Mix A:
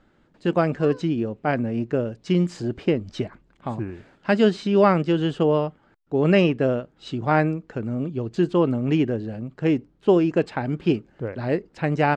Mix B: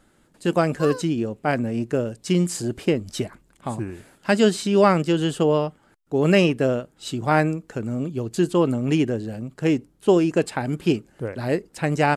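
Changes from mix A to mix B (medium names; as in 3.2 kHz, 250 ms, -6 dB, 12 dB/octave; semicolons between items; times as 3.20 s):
background +8.5 dB; master: remove distance through air 180 m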